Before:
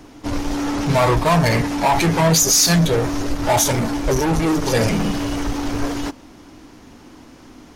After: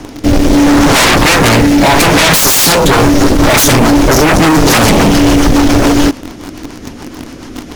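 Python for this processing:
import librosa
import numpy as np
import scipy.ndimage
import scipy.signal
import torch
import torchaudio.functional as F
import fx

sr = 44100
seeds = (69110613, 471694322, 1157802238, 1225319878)

p1 = fx.rotary_switch(x, sr, hz=0.75, then_hz=7.0, switch_at_s=2.6)
p2 = fx.quant_dither(p1, sr, seeds[0], bits=6, dither='none')
p3 = p1 + (p2 * 10.0 ** (-5.0 / 20.0))
p4 = fx.fold_sine(p3, sr, drive_db=16, ceiling_db=-1.5)
y = p4 * 10.0 ** (-2.5 / 20.0)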